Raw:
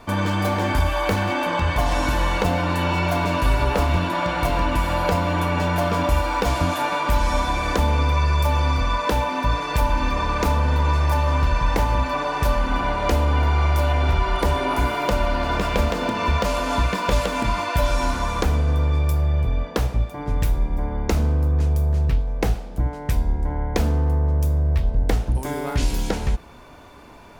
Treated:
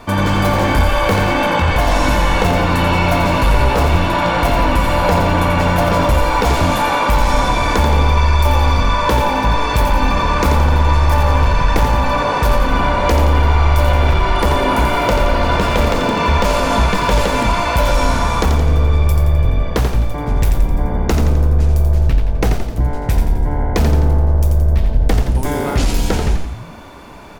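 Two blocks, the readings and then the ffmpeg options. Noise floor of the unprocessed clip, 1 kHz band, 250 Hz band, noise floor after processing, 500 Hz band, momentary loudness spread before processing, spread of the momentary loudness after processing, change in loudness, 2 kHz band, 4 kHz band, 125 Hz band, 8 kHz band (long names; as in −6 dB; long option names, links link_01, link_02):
−34 dBFS, +7.0 dB, +7.0 dB, −21 dBFS, +7.0 dB, 4 LU, 4 LU, +6.5 dB, +7.0 dB, +7.0 dB, +6.5 dB, +7.0 dB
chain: -filter_complex "[0:a]aeval=exprs='0.473*sin(PI/2*1.58*val(0)/0.473)':channel_layout=same,asplit=7[link_01][link_02][link_03][link_04][link_05][link_06][link_07];[link_02]adelay=86,afreqshift=-55,volume=-6dB[link_08];[link_03]adelay=172,afreqshift=-110,volume=-12dB[link_09];[link_04]adelay=258,afreqshift=-165,volume=-18dB[link_10];[link_05]adelay=344,afreqshift=-220,volume=-24.1dB[link_11];[link_06]adelay=430,afreqshift=-275,volume=-30.1dB[link_12];[link_07]adelay=516,afreqshift=-330,volume=-36.1dB[link_13];[link_01][link_08][link_09][link_10][link_11][link_12][link_13]amix=inputs=7:normalize=0,volume=-1dB"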